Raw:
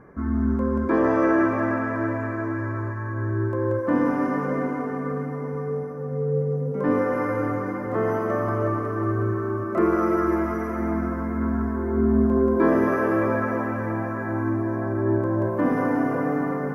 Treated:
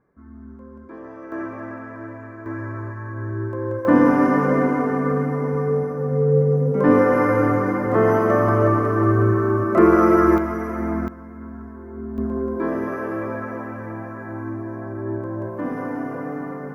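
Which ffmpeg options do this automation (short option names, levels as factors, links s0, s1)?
-af "asetnsamples=n=441:p=0,asendcmd='1.32 volume volume -9.5dB;2.46 volume volume -2dB;3.85 volume volume 7dB;10.38 volume volume 1dB;11.08 volume volume -11.5dB;12.18 volume volume -5dB',volume=0.126"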